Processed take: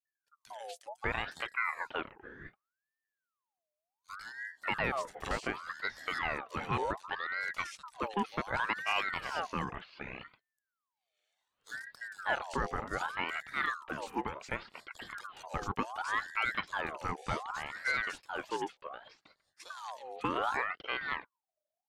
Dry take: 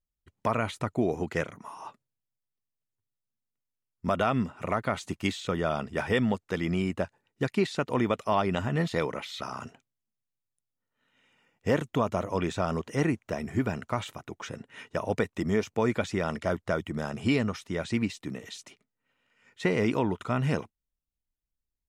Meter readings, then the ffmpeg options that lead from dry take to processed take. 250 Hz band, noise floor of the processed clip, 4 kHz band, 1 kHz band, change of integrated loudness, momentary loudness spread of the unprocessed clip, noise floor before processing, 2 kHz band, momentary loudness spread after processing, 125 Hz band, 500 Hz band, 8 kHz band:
-15.0 dB, under -85 dBFS, -2.5 dB, -2.0 dB, -6.5 dB, 12 LU, under -85 dBFS, +1.5 dB, 14 LU, -15.0 dB, -12.0 dB, -6.0 dB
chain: -filter_complex "[0:a]acrossover=split=150|2900[s0][s1][s2];[s0]adelay=50[s3];[s1]adelay=590[s4];[s3][s4][s2]amix=inputs=3:normalize=0,aeval=exprs='val(0)*sin(2*PI*1200*n/s+1200*0.5/0.67*sin(2*PI*0.67*n/s))':c=same,volume=0.668"

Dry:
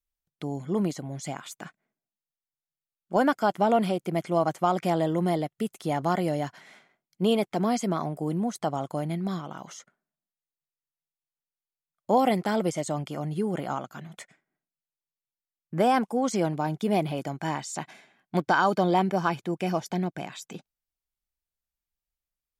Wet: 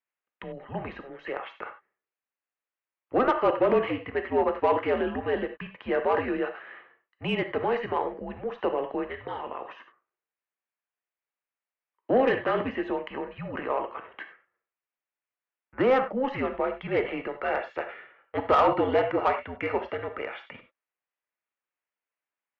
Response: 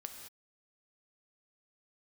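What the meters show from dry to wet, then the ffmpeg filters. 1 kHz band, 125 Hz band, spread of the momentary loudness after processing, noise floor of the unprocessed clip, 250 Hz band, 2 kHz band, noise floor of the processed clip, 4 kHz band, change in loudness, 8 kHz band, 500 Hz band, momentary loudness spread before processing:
-1.5 dB, -10.0 dB, 17 LU, under -85 dBFS, -5.0 dB, +1.5 dB, under -85 dBFS, -3.0 dB, -0.5 dB, under -25 dB, +2.0 dB, 15 LU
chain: -filter_complex "[0:a]highpass=f=440:t=q:w=0.5412,highpass=f=440:t=q:w=1.307,lowpass=f=2800:t=q:w=0.5176,lowpass=f=2800:t=q:w=0.7071,lowpass=f=2800:t=q:w=1.932,afreqshift=-260,aemphasis=mode=production:type=75fm[s0];[1:a]atrim=start_sample=2205,atrim=end_sample=3969,asetrate=37926,aresample=44100[s1];[s0][s1]afir=irnorm=-1:irlink=0,asplit=2[s2][s3];[s3]highpass=f=720:p=1,volume=5.62,asoftclip=type=tanh:threshold=0.2[s4];[s2][s4]amix=inputs=2:normalize=0,lowpass=f=2000:p=1,volume=0.501,volume=1.41"

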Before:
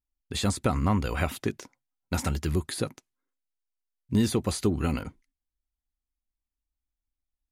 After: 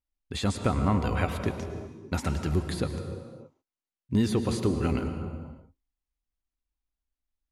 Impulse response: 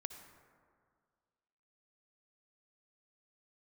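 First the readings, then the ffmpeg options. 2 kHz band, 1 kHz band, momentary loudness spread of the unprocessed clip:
-1.0 dB, +0.5 dB, 10 LU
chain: -filter_complex "[0:a]highshelf=f=6400:g=-10[s0];[1:a]atrim=start_sample=2205,afade=t=out:st=0.4:d=0.01,atrim=end_sample=18081,asetrate=24696,aresample=44100[s1];[s0][s1]afir=irnorm=-1:irlink=0"

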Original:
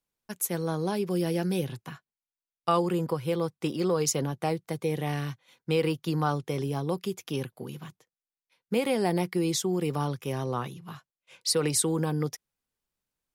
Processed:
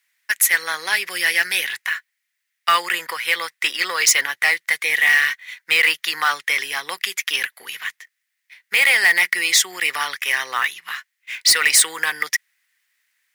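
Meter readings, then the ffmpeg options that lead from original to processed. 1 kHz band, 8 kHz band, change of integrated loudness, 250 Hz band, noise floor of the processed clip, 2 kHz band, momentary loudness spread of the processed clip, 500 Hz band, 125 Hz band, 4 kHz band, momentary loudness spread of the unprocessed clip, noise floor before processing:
+8.0 dB, +13.5 dB, +11.0 dB, -16.5 dB, -77 dBFS, +25.5 dB, 12 LU, -7.5 dB, under -20 dB, +16.5 dB, 15 LU, under -85 dBFS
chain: -af "highpass=f=1900:t=q:w=7,acrusher=bits=5:mode=log:mix=0:aa=0.000001,apsyclip=15.8,volume=0.398"

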